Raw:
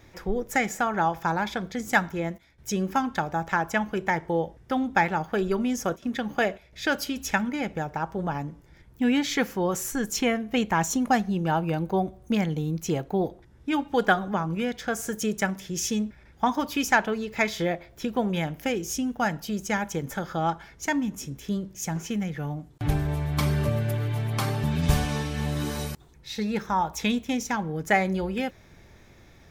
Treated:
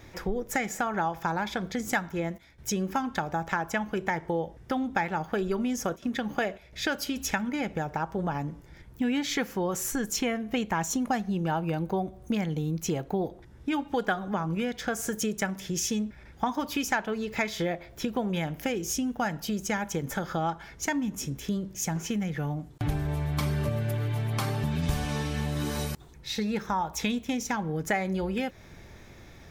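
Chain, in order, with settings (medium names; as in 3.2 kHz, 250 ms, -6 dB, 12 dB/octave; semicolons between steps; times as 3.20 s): compression 2.5:1, threshold -32 dBFS, peak gain reduction 11.5 dB; trim +3.5 dB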